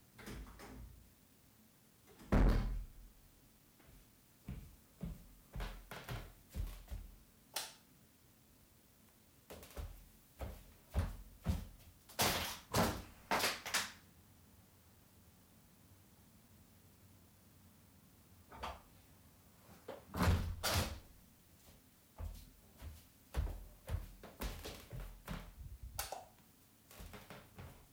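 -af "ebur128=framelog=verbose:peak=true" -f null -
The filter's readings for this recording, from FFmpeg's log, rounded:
Integrated loudness:
  I:         -42.4 LUFS
  Threshold: -55.2 LUFS
Loudness range:
  LRA:        18.0 LU
  Threshold: -65.0 LUFS
  LRA low:   -57.3 LUFS
  LRA high:  -39.3 LUFS
True peak:
  Peak:      -24.7 dBFS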